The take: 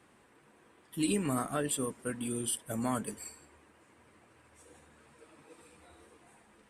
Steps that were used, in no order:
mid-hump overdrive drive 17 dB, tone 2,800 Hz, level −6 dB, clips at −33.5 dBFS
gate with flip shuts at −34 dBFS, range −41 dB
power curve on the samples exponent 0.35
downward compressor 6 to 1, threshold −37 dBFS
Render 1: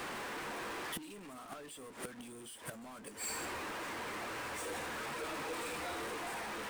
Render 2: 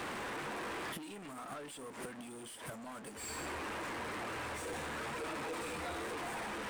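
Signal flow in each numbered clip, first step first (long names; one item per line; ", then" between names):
downward compressor, then gate with flip, then mid-hump overdrive, then power curve on the samples
downward compressor, then gate with flip, then power curve on the samples, then mid-hump overdrive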